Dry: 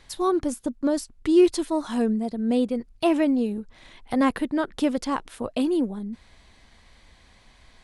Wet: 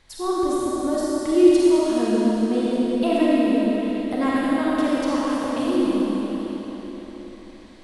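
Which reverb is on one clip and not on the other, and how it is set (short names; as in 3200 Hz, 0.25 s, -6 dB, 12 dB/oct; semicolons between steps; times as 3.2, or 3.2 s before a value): digital reverb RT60 4.4 s, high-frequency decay 0.95×, pre-delay 10 ms, DRR -7.5 dB; gain -4.5 dB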